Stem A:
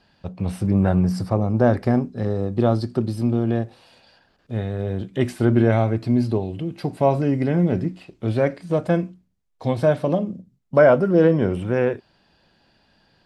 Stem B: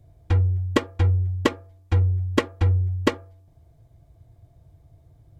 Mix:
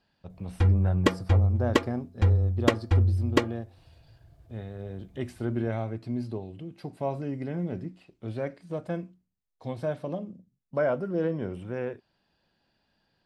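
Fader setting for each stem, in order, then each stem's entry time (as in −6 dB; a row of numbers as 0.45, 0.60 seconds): −12.5, −2.0 decibels; 0.00, 0.30 seconds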